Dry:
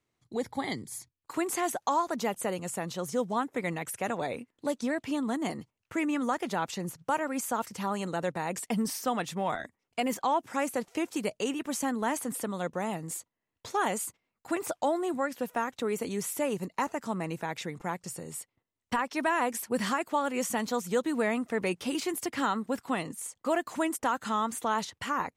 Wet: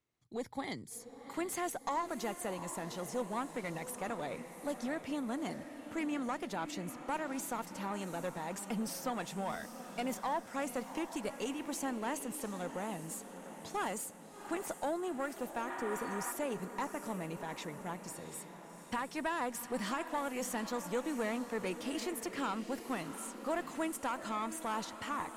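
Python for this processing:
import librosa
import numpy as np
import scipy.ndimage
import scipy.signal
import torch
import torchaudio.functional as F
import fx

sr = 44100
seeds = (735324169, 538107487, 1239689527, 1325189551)

y = fx.diode_clip(x, sr, knee_db=-23.5)
y = fx.spec_repair(y, sr, seeds[0], start_s=15.71, length_s=0.58, low_hz=670.0, high_hz=4400.0, source='before')
y = fx.echo_diffused(y, sr, ms=738, feedback_pct=55, wet_db=-10.5)
y = y * librosa.db_to_amplitude(-6.0)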